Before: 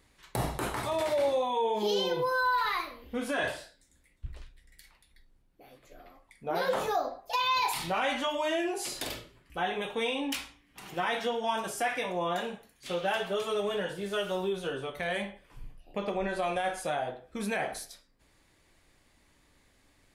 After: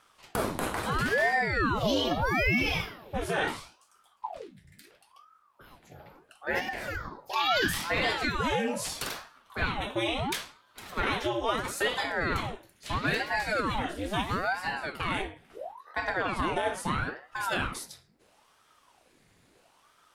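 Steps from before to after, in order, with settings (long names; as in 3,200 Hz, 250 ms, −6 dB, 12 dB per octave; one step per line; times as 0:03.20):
0:06.59–0:07.36: downward compressor 6 to 1, threshold −34 dBFS, peak gain reduction 10 dB
ring modulator whose carrier an LFO sweeps 700 Hz, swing 85%, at 0.75 Hz
level +4.5 dB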